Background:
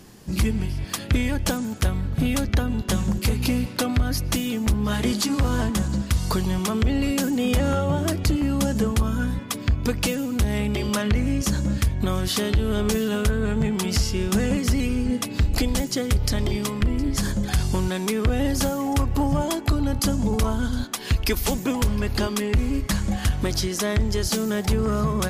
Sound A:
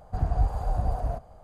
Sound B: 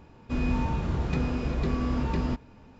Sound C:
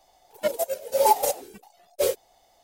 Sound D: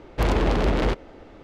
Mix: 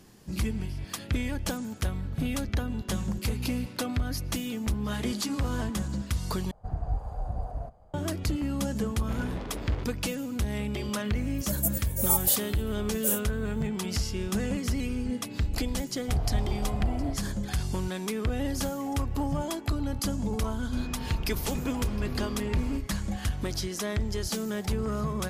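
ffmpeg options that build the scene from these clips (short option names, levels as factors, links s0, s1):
-filter_complex "[1:a]asplit=2[s0][s1];[0:a]volume=0.422[s2];[s0]tiltshelf=f=1300:g=3[s3];[3:a]aexciter=amount=12.5:drive=3.8:freq=6300[s4];[s2]asplit=2[s5][s6];[s5]atrim=end=6.514[s7];[s3]atrim=end=1.43,asetpts=PTS-STARTPTS,volume=0.355[s8];[s6]atrim=start=7.936[s9];[4:a]atrim=end=1.43,asetpts=PTS-STARTPTS,volume=0.15,afade=t=in:d=0.004:c=hsin,afade=t=out:st=1.426:d=0.004:c=hsin,adelay=392490S[s10];[s4]atrim=end=2.63,asetpts=PTS-STARTPTS,volume=0.158,afade=t=in:d=0.004:c=hsin,afade=t=out:st=2.626:d=0.004:c=hsin,adelay=11040[s11];[s1]atrim=end=1.43,asetpts=PTS-STARTPTS,volume=0.596,afade=t=in:d=0.004:c=hsin,afade=t=out:st=1.426:d=0.004:c=hsin,adelay=15950[s12];[2:a]atrim=end=2.79,asetpts=PTS-STARTPTS,volume=0.376,afade=t=in:d=0.004:c=hsin,afade=t=out:st=2.786:d=0.004:c=hsin,adelay=20420[s13];[s7][s8]acrossfade=d=0.004:c1=hsin:c2=hsin[s14];[s14][s9]acrossfade=d=0.004:c1=hsin:c2=hsin[s15];[s15][s10][s11][s12][s13]amix=inputs=5:normalize=0"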